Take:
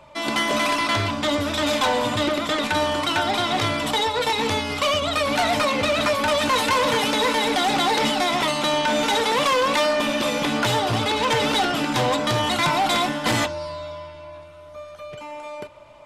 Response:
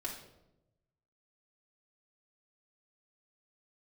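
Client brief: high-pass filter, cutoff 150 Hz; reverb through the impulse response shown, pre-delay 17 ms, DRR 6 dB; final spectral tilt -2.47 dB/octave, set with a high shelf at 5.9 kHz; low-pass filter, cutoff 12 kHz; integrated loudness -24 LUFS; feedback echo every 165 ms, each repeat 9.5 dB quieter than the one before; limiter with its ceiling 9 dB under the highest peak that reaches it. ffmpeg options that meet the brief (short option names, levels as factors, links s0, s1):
-filter_complex "[0:a]highpass=150,lowpass=12000,highshelf=f=5900:g=6,alimiter=limit=0.119:level=0:latency=1,aecho=1:1:165|330|495|660:0.335|0.111|0.0365|0.012,asplit=2[s0][s1];[1:a]atrim=start_sample=2205,adelay=17[s2];[s1][s2]afir=irnorm=-1:irlink=0,volume=0.447[s3];[s0][s3]amix=inputs=2:normalize=0"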